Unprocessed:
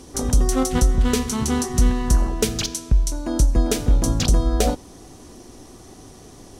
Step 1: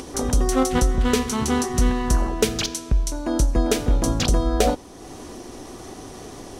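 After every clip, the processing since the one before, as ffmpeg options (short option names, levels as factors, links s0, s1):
-af "bass=f=250:g=-6,treble=f=4000:g=-5,acompressor=mode=upward:threshold=0.0224:ratio=2.5,volume=1.41"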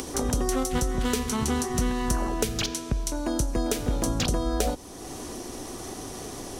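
-filter_complex "[0:a]acrossover=split=130|3800[s0][s1][s2];[s0]acompressor=threshold=0.0447:ratio=4[s3];[s1]acompressor=threshold=0.0501:ratio=4[s4];[s2]acompressor=threshold=0.0141:ratio=4[s5];[s3][s4][s5]amix=inputs=3:normalize=0,crystalizer=i=1:c=0"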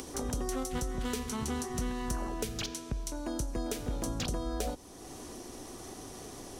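-af "asoftclip=type=tanh:threshold=0.251,volume=0.398"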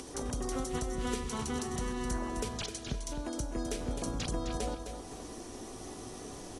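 -af "aecho=1:1:259|518|777|1036:0.422|0.135|0.0432|0.0138,volume=0.794" -ar 24000 -c:a aac -b:a 32k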